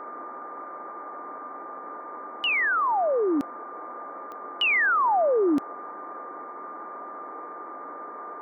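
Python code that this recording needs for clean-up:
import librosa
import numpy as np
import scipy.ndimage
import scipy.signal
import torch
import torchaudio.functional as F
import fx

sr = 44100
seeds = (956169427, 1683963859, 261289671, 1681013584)

y = fx.fix_declick_ar(x, sr, threshold=10.0)
y = fx.notch(y, sr, hz=1200.0, q=30.0)
y = fx.noise_reduce(y, sr, print_start_s=7.45, print_end_s=7.95, reduce_db=30.0)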